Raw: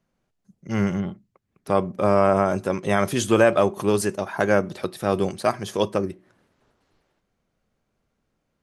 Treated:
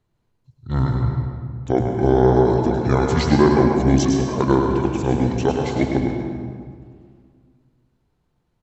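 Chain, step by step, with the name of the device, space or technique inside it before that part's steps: 0.83–1.94 s: hum notches 50/100/150/200/250/300/350 Hz; monster voice (pitch shift -7.5 st; bass shelf 140 Hz +4 dB; delay 104 ms -6.5 dB; reverberation RT60 2.0 s, pre-delay 117 ms, DRR 3.5 dB); trim +1 dB

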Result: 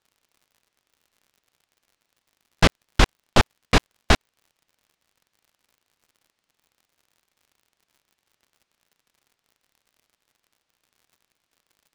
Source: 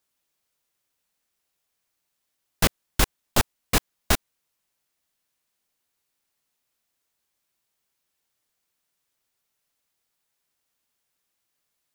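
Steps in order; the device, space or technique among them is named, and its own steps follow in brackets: lo-fi chain (low-pass 4.5 kHz 12 dB/octave; wow and flutter; crackle -53 dBFS); trim +5.5 dB

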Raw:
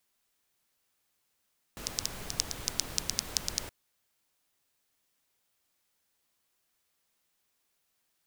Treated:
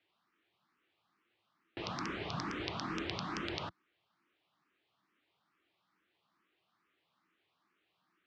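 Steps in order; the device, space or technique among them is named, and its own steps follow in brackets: barber-pole phaser into a guitar amplifier (barber-pole phaser +2.3 Hz; saturation -16.5 dBFS, distortion -8 dB; cabinet simulation 110–3500 Hz, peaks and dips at 180 Hz +5 dB, 330 Hz +9 dB, 530 Hz -5 dB, 1.2 kHz +7 dB); trim +6.5 dB

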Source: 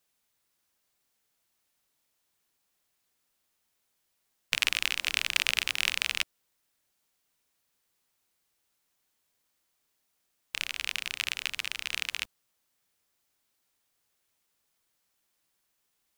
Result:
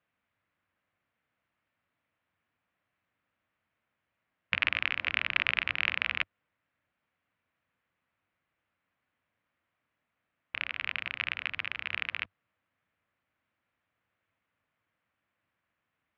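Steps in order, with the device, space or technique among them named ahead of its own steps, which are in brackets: bass cabinet (cabinet simulation 65–2400 Hz, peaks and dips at 97 Hz +6 dB, 400 Hz -9 dB, 840 Hz -5 dB); trim +4 dB

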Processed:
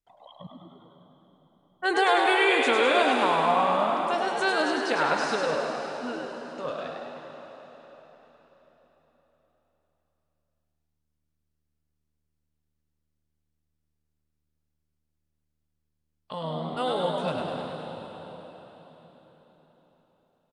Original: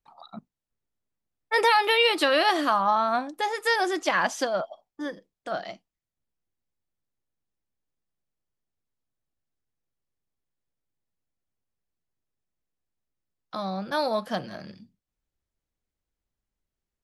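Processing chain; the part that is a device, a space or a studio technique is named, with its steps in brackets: slowed and reverbed (tape speed -17%; reverberation RT60 4.5 s, pre-delay 95 ms, DRR 4.5 dB); frequency-shifting echo 102 ms, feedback 56%, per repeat +76 Hz, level -4.5 dB; trim -3 dB

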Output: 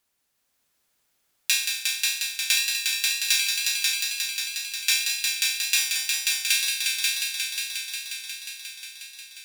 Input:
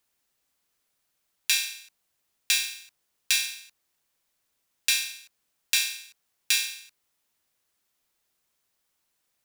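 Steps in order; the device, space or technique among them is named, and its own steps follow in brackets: multi-head tape echo (multi-head delay 179 ms, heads all three, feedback 72%, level -6 dB; wow and flutter 25 cents); trim +1 dB

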